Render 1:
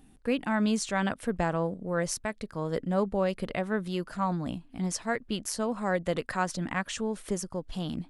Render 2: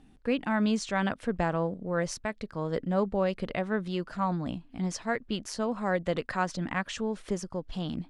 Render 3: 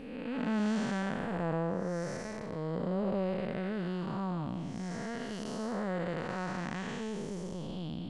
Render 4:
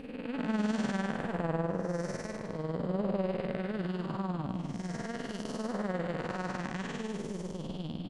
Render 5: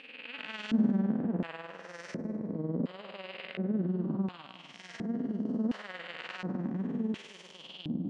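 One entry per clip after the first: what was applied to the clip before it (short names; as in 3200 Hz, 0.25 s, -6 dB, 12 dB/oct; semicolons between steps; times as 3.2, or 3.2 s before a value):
LPF 5800 Hz 12 dB/oct
time blur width 0.398 s; reverse; upward compressor, threshold -35 dBFS; reverse
tremolo 20 Hz, depth 62%; outdoor echo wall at 45 m, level -11 dB; gain +3 dB
reverse; upward compressor, threshold -38 dBFS; reverse; LFO band-pass square 0.7 Hz 250–2800 Hz; gain +9 dB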